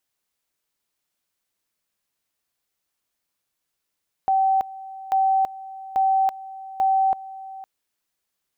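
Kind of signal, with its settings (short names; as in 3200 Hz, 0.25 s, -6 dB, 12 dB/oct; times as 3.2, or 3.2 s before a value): two-level tone 770 Hz -16 dBFS, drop 18 dB, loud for 0.33 s, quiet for 0.51 s, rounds 4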